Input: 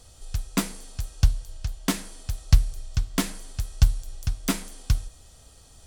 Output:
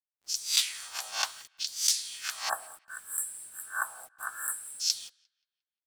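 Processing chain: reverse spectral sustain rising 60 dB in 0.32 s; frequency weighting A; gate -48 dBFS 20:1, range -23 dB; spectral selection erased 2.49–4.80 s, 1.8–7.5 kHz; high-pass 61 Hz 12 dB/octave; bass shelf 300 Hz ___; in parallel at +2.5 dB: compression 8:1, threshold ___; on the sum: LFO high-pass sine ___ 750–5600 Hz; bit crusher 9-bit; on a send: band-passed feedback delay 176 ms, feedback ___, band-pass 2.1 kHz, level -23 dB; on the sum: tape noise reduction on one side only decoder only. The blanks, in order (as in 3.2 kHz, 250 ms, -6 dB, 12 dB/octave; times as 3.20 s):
-6 dB, -42 dBFS, 0.68 Hz, 46%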